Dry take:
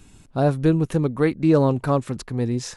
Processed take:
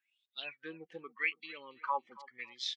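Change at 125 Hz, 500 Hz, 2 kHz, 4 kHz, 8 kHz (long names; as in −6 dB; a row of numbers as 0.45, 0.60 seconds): below −40 dB, −27.0 dB, −2.5 dB, −0.5 dB, can't be measured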